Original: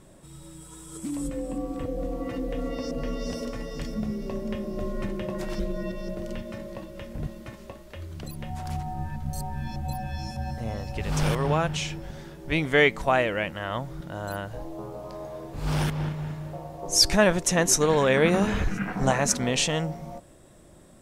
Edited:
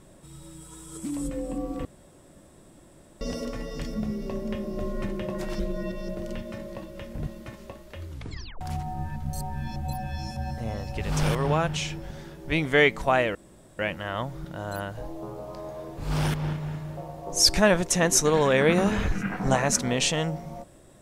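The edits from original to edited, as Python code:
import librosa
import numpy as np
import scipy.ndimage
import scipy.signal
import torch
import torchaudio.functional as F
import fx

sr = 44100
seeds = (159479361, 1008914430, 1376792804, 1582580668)

y = fx.edit(x, sr, fx.room_tone_fill(start_s=1.85, length_s=1.36),
    fx.tape_stop(start_s=8.09, length_s=0.52),
    fx.insert_room_tone(at_s=13.35, length_s=0.44), tone=tone)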